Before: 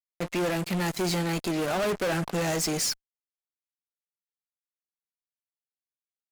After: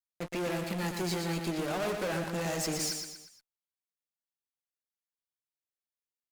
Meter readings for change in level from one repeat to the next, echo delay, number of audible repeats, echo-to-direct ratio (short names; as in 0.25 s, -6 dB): -7.0 dB, 0.119 s, 4, -4.5 dB